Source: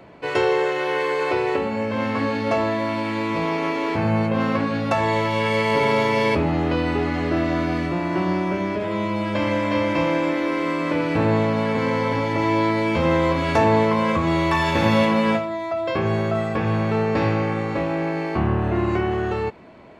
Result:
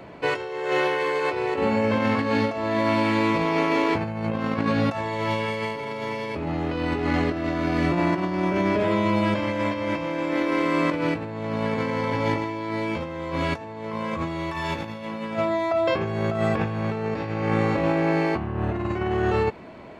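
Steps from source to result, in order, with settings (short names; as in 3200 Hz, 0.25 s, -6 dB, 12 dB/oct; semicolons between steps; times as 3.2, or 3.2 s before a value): negative-ratio compressor -24 dBFS, ratio -0.5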